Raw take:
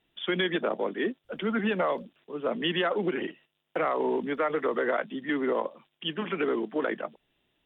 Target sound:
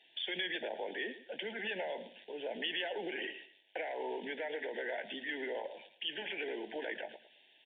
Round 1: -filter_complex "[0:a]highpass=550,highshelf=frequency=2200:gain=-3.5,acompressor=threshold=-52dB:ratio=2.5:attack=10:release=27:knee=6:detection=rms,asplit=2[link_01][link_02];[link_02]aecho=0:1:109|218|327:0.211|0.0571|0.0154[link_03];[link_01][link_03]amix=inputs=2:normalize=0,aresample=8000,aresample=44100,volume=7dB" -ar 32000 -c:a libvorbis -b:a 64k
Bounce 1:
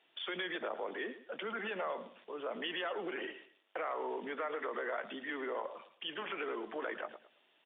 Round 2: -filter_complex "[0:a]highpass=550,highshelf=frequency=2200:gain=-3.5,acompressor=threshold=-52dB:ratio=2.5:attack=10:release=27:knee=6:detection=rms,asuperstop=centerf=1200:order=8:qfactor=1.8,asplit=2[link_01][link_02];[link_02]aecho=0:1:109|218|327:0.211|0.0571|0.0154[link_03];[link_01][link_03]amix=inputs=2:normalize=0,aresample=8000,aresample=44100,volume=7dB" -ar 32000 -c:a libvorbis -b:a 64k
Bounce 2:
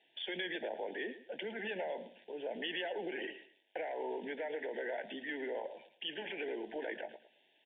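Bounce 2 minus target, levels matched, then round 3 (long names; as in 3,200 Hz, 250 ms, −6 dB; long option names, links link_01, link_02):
4,000 Hz band −2.5 dB
-filter_complex "[0:a]highpass=550,highshelf=frequency=2200:gain=8,acompressor=threshold=-52dB:ratio=2.5:attack=10:release=27:knee=6:detection=rms,asuperstop=centerf=1200:order=8:qfactor=1.8,asplit=2[link_01][link_02];[link_02]aecho=0:1:109|218|327:0.211|0.0571|0.0154[link_03];[link_01][link_03]amix=inputs=2:normalize=0,aresample=8000,aresample=44100,volume=7dB" -ar 32000 -c:a libvorbis -b:a 64k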